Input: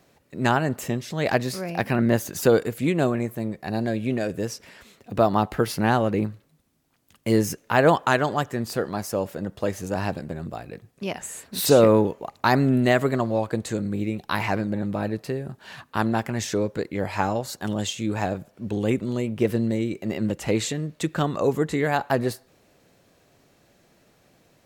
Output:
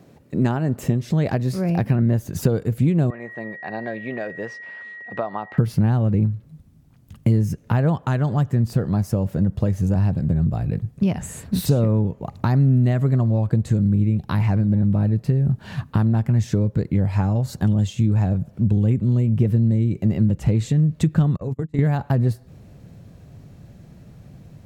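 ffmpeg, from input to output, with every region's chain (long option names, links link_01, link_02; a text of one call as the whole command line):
ffmpeg -i in.wav -filter_complex "[0:a]asettb=1/sr,asplit=3[link_01][link_02][link_03];[link_01]atrim=end=3.104[link_04];[link_02]atrim=start=3.1:end=5.58,asetpts=PTS-STARTPTS,afade=type=in:duration=0.004:curve=qsin,afade=type=out:start_time=2.476:duration=0.004:curve=qsin,highpass=680,lowpass=2600,aeval=exprs='val(0)+0.0158*sin(2*PI*1900*n/s)':channel_layout=same[link_05];[link_03]atrim=start=5.576[link_06];[link_04][link_05]acrossfade=duration=0.004:curve1=hsin:curve2=qsin[link_07];[link_07][link_06]acrossfade=duration=0.004:curve1=qsin:curve2=hsin,asettb=1/sr,asplit=3[link_08][link_09][link_10];[link_08]atrim=end=21.364[link_11];[link_09]atrim=start=21.36:end=21.79,asetpts=PTS-STARTPTS,afade=type=in:duration=0.004:curve=qsin,afade=type=out:start_time=0.426:duration=0.004:curve=qsin,bandreject=frequency=50:width_type=h:width=6,bandreject=frequency=100:width_type=h:width=6,bandreject=frequency=150:width_type=h:width=6,bandreject=frequency=200:width_type=h:width=6,bandreject=frequency=250:width_type=h:width=6,bandreject=frequency=300:width_type=h:width=6,agate=range=-39dB:threshold=-25dB:ratio=16:release=100:detection=peak,acompressor=threshold=-33dB:ratio=6:attack=3.2:release=140:knee=1:detection=peak[link_12];[link_10]atrim=start=21.786[link_13];[link_11][link_12]acrossfade=duration=0.004:curve1=hsin:curve2=qsin[link_14];[link_14][link_13]acrossfade=duration=0.004:curve1=qsin:curve2=hsin,asubboost=boost=6.5:cutoff=120,acompressor=threshold=-30dB:ratio=4,equalizer=frequency=170:width=0.33:gain=15" out.wav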